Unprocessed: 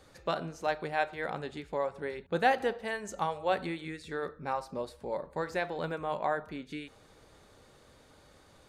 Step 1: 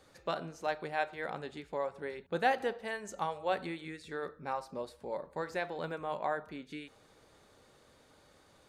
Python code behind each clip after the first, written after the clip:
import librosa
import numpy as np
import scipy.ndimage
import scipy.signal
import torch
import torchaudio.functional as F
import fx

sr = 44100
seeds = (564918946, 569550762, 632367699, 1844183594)

y = fx.low_shelf(x, sr, hz=94.0, db=-7.5)
y = y * 10.0 ** (-3.0 / 20.0)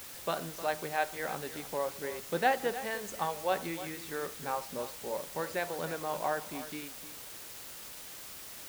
y = fx.quant_dither(x, sr, seeds[0], bits=8, dither='triangular')
y = y + 10.0 ** (-13.5 / 20.0) * np.pad(y, (int(308 * sr / 1000.0), 0))[:len(y)]
y = y * 10.0 ** (1.5 / 20.0)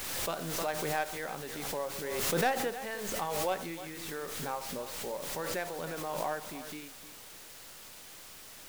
y = fx.tracing_dist(x, sr, depth_ms=0.077)
y = fx.pre_swell(y, sr, db_per_s=27.0)
y = y * 10.0 ** (-3.0 / 20.0)